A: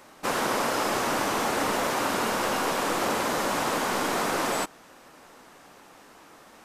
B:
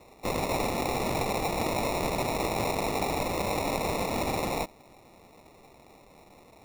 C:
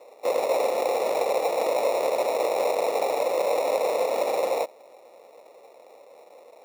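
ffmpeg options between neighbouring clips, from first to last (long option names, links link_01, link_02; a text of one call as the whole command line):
ffmpeg -i in.wav -af "lowshelf=frequency=580:width_type=q:width=1.5:gain=-12,acrusher=samples=28:mix=1:aa=0.000001,volume=-2.5dB" out.wav
ffmpeg -i in.wav -af "highpass=frequency=520:width_type=q:width=4.9,volume=-1.5dB" out.wav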